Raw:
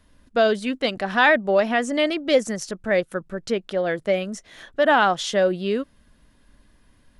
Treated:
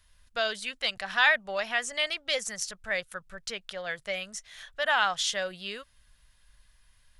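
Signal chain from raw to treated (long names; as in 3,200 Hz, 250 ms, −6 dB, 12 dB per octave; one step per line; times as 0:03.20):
guitar amp tone stack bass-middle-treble 10-0-10
level +1.5 dB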